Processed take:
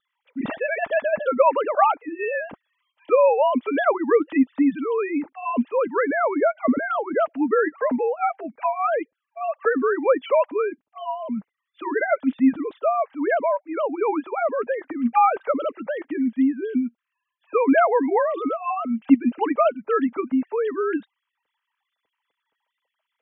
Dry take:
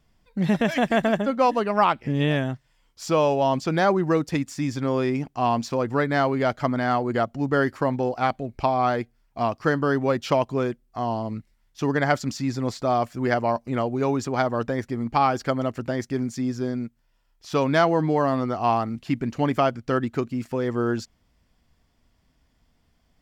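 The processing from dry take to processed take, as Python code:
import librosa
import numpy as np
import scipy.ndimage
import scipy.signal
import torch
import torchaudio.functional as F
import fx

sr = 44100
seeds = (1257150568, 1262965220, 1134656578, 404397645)

y = fx.sine_speech(x, sr)
y = fx.notch_comb(y, sr, f0_hz=360.0)
y = fx.wow_flutter(y, sr, seeds[0], rate_hz=2.1, depth_cents=29.0)
y = y * 10.0 ** (3.0 / 20.0)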